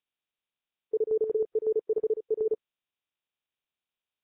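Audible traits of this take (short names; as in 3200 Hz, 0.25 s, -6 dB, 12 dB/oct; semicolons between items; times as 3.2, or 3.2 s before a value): chopped level 5.4 Hz, depth 65%, duty 70%; Nellymoser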